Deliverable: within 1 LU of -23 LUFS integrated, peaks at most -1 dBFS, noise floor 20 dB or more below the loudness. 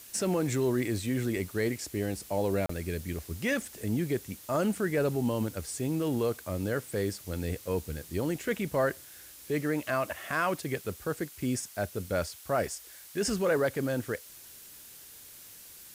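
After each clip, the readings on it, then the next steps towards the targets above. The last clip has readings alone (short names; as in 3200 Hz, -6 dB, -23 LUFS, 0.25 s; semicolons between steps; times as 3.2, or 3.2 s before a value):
dropouts 1; longest dropout 34 ms; noise floor -50 dBFS; noise floor target -52 dBFS; loudness -31.5 LUFS; peak -17.0 dBFS; loudness target -23.0 LUFS
-> interpolate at 2.66, 34 ms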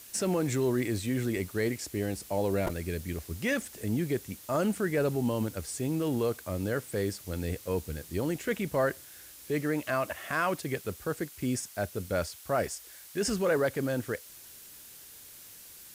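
dropouts 0; noise floor -50 dBFS; noise floor target -52 dBFS
-> noise print and reduce 6 dB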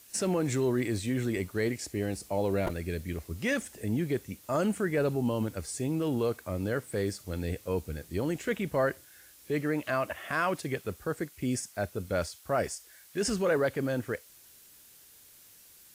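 noise floor -56 dBFS; loudness -31.5 LUFS; peak -17.0 dBFS; loudness target -23.0 LUFS
-> gain +8.5 dB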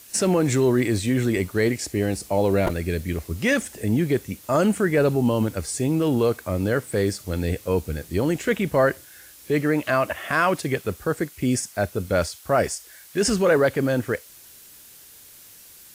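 loudness -23.0 LUFS; peak -8.5 dBFS; noise floor -47 dBFS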